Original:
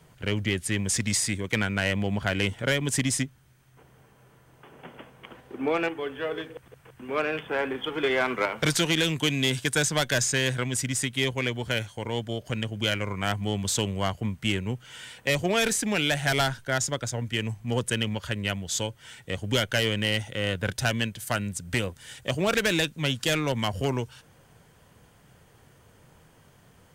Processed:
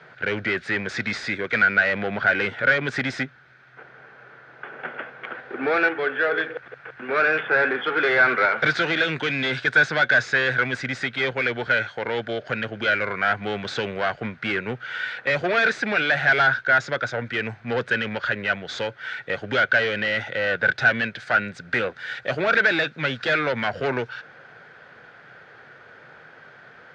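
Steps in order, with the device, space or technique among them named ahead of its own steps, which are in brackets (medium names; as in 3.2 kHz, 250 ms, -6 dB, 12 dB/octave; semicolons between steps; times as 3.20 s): overdrive pedal into a guitar cabinet (overdrive pedal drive 20 dB, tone 6.3 kHz, clips at -13.5 dBFS; cabinet simulation 85–3800 Hz, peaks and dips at 89 Hz -9 dB, 190 Hz -5 dB, 290 Hz -4 dB, 1 kHz -8 dB, 1.5 kHz +10 dB, 3 kHz -10 dB)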